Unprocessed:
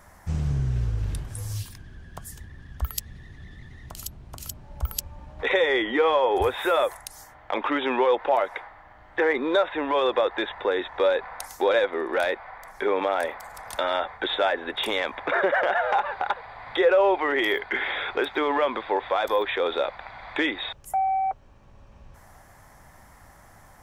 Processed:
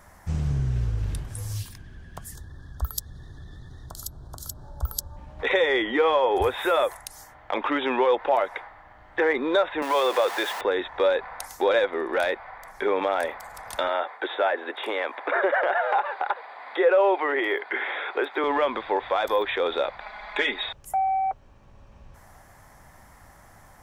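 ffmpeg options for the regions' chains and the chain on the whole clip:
-filter_complex "[0:a]asettb=1/sr,asplit=3[s0][s1][s2];[s0]atrim=end=2.354[s3];[s1]atrim=start=2.35:end=5.17,asetpts=PTS-STARTPTS,afade=t=in:d=0.004:c=qsin,afade=t=out:st=2.816:d=0.004:c=qsin,equalizer=f=210:w=7.3:g=-12,acompressor=mode=upward:threshold=0.0158:ratio=2.5:attack=3.2:release=140:knee=2.83:detection=peak,asuperstop=centerf=2400:order=8:qfactor=1.4[s4];[s2]atrim=start=5.166[s5];[s3][s4]acrossfade=d=0.004:c1=hsin:c2=qsin[s6];[s6][s5]acrossfade=d=0.004:c1=qsin:c2=hsin,asettb=1/sr,asplit=3[s7][s8][s9];[s7]atrim=end=9.824[s10];[s8]atrim=start=9.82:end=10.61,asetpts=PTS-STARTPTS,afade=t=in:d=0.004:c=qsin,afade=t=out:st=0.786:d=0.004:c=qsin,aeval=exprs='val(0)+0.5*0.0355*sgn(val(0))':c=same,highpass=400[s11];[s9]atrim=start=10.606[s12];[s10][s11]acrossfade=d=0.004:c1=hsin:c2=qsin[s13];[s13][s12]acrossfade=d=0.004:c1=qsin:c2=hsin,asettb=1/sr,asplit=3[s14][s15][s16];[s14]atrim=end=13.884[s17];[s15]atrim=start=13.88:end=18.44,asetpts=PTS-STARTPTS,afade=t=in:d=0.004:c=qsin,afade=t=out:st=4.556:d=0.004:c=qsin,acrossover=split=2600[s18][s19];[s19]acompressor=threshold=0.00631:ratio=4:attack=1:release=60[s20];[s18][s20]amix=inputs=2:normalize=0,highpass=f=300:w=0.5412,highpass=f=300:w=1.3066,equalizer=f=5900:t=o:w=0.36:g=-5[s21];[s16]atrim=start=18.436[s22];[s17][s21]acrossfade=d=0.004:c1=hsin:c2=qsin[s23];[s23][s22]acrossfade=d=0.004:c1=qsin:c2=hsin,asettb=1/sr,asplit=3[s24][s25][s26];[s24]atrim=end=20.004[s27];[s25]atrim=start=20:end=20.65,asetpts=PTS-STARTPTS,afade=t=in:d=0.004:c=qsin,afade=t=out:st=0.646:d=0.004:c=qsin,equalizer=f=100:w=0.79:g=-14,aecho=1:1:4.8:0.85,atrim=end_sample=28665[s28];[s26]atrim=start=20.646[s29];[s27][s28]acrossfade=d=0.004:c1=hsin:c2=qsin[s30];[s30][s29]acrossfade=d=0.004:c1=qsin:c2=hsin"

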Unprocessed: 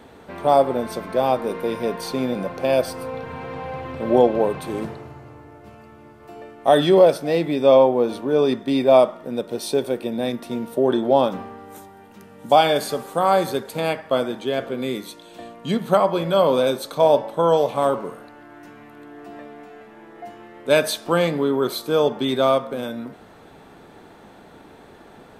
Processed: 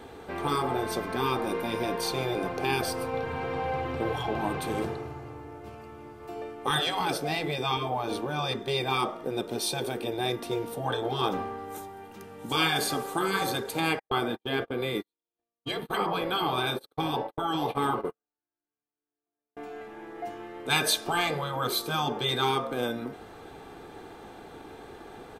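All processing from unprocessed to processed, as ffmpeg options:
-filter_complex "[0:a]asettb=1/sr,asplit=3[s0][s1][s2];[s0]atrim=end=13.994[s3];[s1]atrim=start=13.99:end=19.57,asetpts=PTS-STARTPTS,afade=t=in:d=0.004:c=qsin,afade=t=out:st=5.576:d=0.004:c=qsin,equalizer=f=6700:w=2:g=-12.5,agate=range=0.002:threshold=0.0282:ratio=16:release=100:detection=peak[s4];[s2]atrim=start=19.566[s5];[s3][s4]acrossfade=d=0.004:c1=hsin:c2=qsin[s6];[s6][s5]acrossfade=d=0.004:c1=qsin:c2=hsin,afftfilt=real='re*lt(hypot(re,im),0.355)':imag='im*lt(hypot(re,im),0.355)':win_size=1024:overlap=0.75,bandreject=f=1900:w=26,aecho=1:1:2.5:0.39"

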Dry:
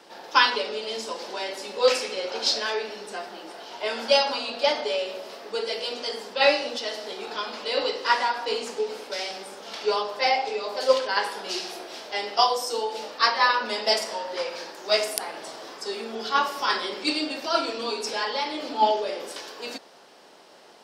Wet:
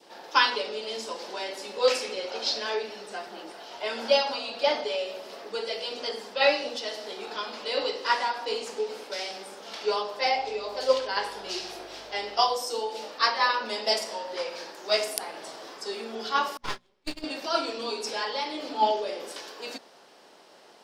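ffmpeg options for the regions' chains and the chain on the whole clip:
-filter_complex "[0:a]asettb=1/sr,asplit=3[s0][s1][s2];[s0]atrim=end=2.074[s3];[s1]atrim=start=2.07:end=6.7,asetpts=PTS-STARTPTS,afade=t=in:d=0.004:c=qsin,afade=t=out:st=4.626:d=0.004:c=qsin,acrossover=split=5900[s4][s5];[s5]acompressor=threshold=0.00447:ratio=4:attack=1:release=60[s6];[s4][s6]amix=inputs=2:normalize=0,aphaser=in_gain=1:out_gain=1:delay=1.6:decay=0.21:speed=1.5:type=sinusoidal[s7];[s2]atrim=start=6.696[s8];[s3][s7]acrossfade=d=0.004:c1=hsin:c2=qsin[s9];[s9][s8]acrossfade=d=0.004:c1=qsin:c2=hsin,asettb=1/sr,asplit=3[s10][s11][s12];[s10]atrim=end=10.354[s13];[s11]atrim=start=10.35:end=12.56,asetpts=PTS-STARTPTS,afade=t=in:d=0.004:c=qsin,afade=t=out:st=2.206:d=0.004:c=qsin,equalizer=f=11000:t=o:w=0.82:g=-4,aeval=exprs='val(0)+0.00112*(sin(2*PI*50*n/s)+sin(2*PI*2*50*n/s)/2+sin(2*PI*3*50*n/s)/3+sin(2*PI*4*50*n/s)/4+sin(2*PI*5*50*n/s)/5)':c=same[s14];[s12]atrim=start=12.556[s15];[s13][s14]acrossfade=d=0.004:c1=hsin:c2=qsin[s16];[s16][s15]acrossfade=d=0.004:c1=qsin:c2=hsin,asettb=1/sr,asplit=3[s17][s18][s19];[s17]atrim=end=16.574[s20];[s18]atrim=start=16.57:end=17.24,asetpts=PTS-STARTPTS,afade=t=in:d=0.004:c=qsin,afade=t=out:st=0.666:d=0.004:c=qsin,aeval=exprs='max(val(0),0)':c=same,agate=range=0.0316:threshold=0.0355:ratio=16:release=100:detection=peak,highshelf=f=4400:g=-7[s21];[s19]atrim=start=17.236[s22];[s20][s21]acrossfade=d=0.004:c1=hsin:c2=qsin[s23];[s23][s22]acrossfade=d=0.004:c1=qsin:c2=hsin,bandreject=f=60:t=h:w=6,bandreject=f=120:t=h:w=6,bandreject=f=180:t=h:w=6,bandreject=f=240:t=h:w=6,adynamicequalizer=threshold=0.0126:dfrequency=1500:dqfactor=1.2:tfrequency=1500:tqfactor=1.2:attack=5:release=100:ratio=0.375:range=2:mode=cutabove:tftype=bell,volume=0.75"

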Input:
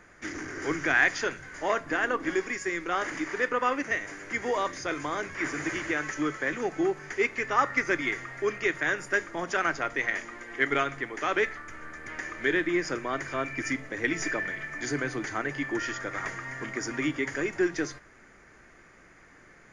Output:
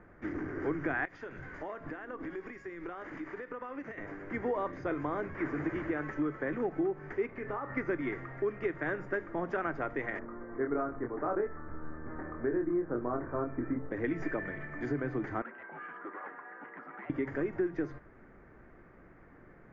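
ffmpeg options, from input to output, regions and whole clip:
-filter_complex "[0:a]asettb=1/sr,asplit=3[s0][s1][s2];[s0]atrim=end=1.054[s3];[s1]atrim=start=1.05:end=3.98,asetpts=PTS-STARTPTS,afade=t=in:d=0.004:c=qsin,afade=t=out:st=2.926:d=0.004:c=qsin,highshelf=f=2000:g=9,acompressor=threshold=0.0178:ratio=12:attack=3.2:release=140:knee=1:detection=peak[s4];[s2]atrim=start=3.976[s5];[s3][s4]acrossfade=d=0.004:c1=hsin:c2=qsin[s6];[s6][s5]acrossfade=d=0.004:c1=qsin:c2=hsin,asettb=1/sr,asplit=3[s7][s8][s9];[s7]atrim=end=7.264[s10];[s8]atrim=start=7.26:end=7.77,asetpts=PTS-STARTPTS,afade=t=in:d=0.004:c=qsin,afade=t=out:st=0.506:d=0.004:c=qsin,highshelf=f=3900:g=-6,acompressor=threshold=0.0282:ratio=12:attack=3.2:release=140:knee=1:detection=peak,asplit=2[s11][s12];[s12]adelay=29,volume=0.398[s13];[s11][s13]amix=inputs=2:normalize=0,atrim=end_sample=22491[s14];[s9]atrim=start=7.766[s15];[s10][s14]acrossfade=d=0.004:c1=hsin:c2=qsin[s16];[s16][s15]acrossfade=d=0.004:c1=qsin:c2=hsin,asettb=1/sr,asplit=3[s17][s18][s19];[s17]atrim=end=10.194[s20];[s18]atrim=start=10.19:end=13.91,asetpts=PTS-STARTPTS,afade=t=in:d=0.004:c=qsin,afade=t=out:st=3.716:d=0.004:c=qsin,lowpass=f=1400:w=0.5412,lowpass=f=1400:w=1.3066,asplit=2[s21][s22];[s22]adelay=25,volume=0.708[s23];[s21][s23]amix=inputs=2:normalize=0,atrim=end_sample=164052[s24];[s19]atrim=start=13.906[s25];[s20][s24]acrossfade=d=0.004:c1=hsin:c2=qsin[s26];[s26][s25]acrossfade=d=0.004:c1=qsin:c2=hsin,asettb=1/sr,asplit=3[s27][s28][s29];[s27]atrim=end=15.424[s30];[s28]atrim=start=15.42:end=17.1,asetpts=PTS-STARTPTS,afade=t=in:d=0.004:c=qsin,afade=t=out:st=1.676:d=0.004:c=qsin,volume=28.2,asoftclip=hard,volume=0.0355,afreqshift=-190,highpass=f=360:w=0.5412,highpass=f=360:w=1.3066,equalizer=f=450:t=q:w=4:g=-6,equalizer=f=650:t=q:w=4:g=-5,equalizer=f=1000:t=q:w=4:g=-5,equalizer=f=1600:t=q:w=4:g=-4,lowpass=f=2400:w=0.5412,lowpass=f=2400:w=1.3066[s31];[s29]atrim=start=17.096[s32];[s30][s31]acrossfade=d=0.004:c1=hsin:c2=qsin[s33];[s33][s32]acrossfade=d=0.004:c1=qsin:c2=hsin,lowpass=1400,tiltshelf=f=630:g=3.5,acompressor=threshold=0.0355:ratio=4"

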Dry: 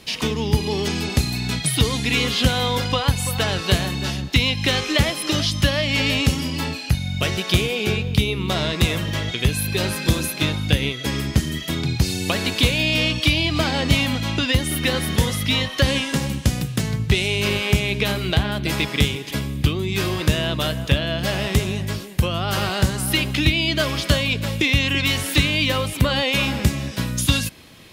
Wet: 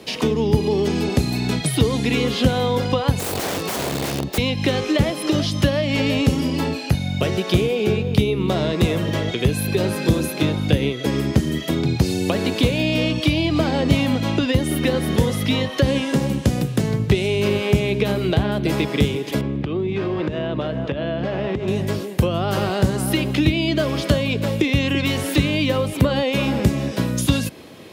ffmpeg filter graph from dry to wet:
-filter_complex "[0:a]asettb=1/sr,asplit=3[s0][s1][s2];[s0]atrim=end=3.194[s3];[s1]atrim=start=3.19:end=4.38,asetpts=PTS-STARTPTS,afade=t=in:d=0.004:c=qsin,afade=t=out:st=1.186:d=0.004:c=qsin,bandreject=f=1500:w=5.1,aeval=exprs='(mod(9.44*val(0)+1,2)-1)/9.44':c=same[s4];[s2]atrim=start=4.376[s5];[s3][s4]acrossfade=d=0.004:c1=hsin:c2=qsin[s6];[s6][s5]acrossfade=d=0.004:c1=qsin:c2=hsin,asettb=1/sr,asplit=3[s7][s8][s9];[s7]atrim=end=19.414[s10];[s8]atrim=start=19.41:end=21.68,asetpts=PTS-STARTPTS,afade=t=in:d=0.004:c=qsin,afade=t=out:st=2.266:d=0.004:c=qsin,lowpass=2700,acompressor=threshold=0.0708:ratio=12:attack=3.2:release=140:knee=1:detection=peak[s11];[s9]atrim=start=21.676[s12];[s10][s11]acrossfade=d=0.004:c1=hsin:c2=qsin[s13];[s13][s12]acrossfade=d=0.004:c1=qsin:c2=hsin,highpass=66,equalizer=f=440:w=0.56:g=12,acrossover=split=230[s14][s15];[s15]acompressor=threshold=0.0708:ratio=2[s16];[s14][s16]amix=inputs=2:normalize=0,volume=0.891"

